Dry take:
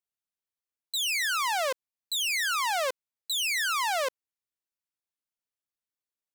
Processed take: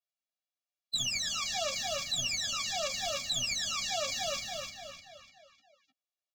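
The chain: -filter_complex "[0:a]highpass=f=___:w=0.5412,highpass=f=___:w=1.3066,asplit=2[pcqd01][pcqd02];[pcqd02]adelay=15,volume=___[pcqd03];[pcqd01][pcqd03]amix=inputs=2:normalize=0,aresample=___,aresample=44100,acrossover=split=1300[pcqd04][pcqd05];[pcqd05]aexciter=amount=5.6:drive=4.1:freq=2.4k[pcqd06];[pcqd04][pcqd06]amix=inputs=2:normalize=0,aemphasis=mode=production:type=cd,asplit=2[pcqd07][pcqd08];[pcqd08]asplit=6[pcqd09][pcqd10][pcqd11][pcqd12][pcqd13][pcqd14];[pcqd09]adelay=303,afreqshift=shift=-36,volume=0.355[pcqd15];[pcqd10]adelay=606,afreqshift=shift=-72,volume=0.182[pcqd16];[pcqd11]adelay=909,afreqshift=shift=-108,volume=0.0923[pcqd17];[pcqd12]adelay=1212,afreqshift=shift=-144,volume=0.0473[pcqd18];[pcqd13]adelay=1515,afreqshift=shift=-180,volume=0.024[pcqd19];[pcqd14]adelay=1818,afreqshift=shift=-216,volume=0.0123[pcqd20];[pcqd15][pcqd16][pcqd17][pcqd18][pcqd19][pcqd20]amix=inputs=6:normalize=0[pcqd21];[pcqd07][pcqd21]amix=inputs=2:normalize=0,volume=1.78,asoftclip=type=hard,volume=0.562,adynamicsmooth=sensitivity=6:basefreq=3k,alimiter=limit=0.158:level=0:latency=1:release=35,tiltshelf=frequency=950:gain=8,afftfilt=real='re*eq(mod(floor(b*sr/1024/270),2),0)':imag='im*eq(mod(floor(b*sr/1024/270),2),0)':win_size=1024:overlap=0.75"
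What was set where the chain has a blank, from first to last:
510, 510, 0.562, 16000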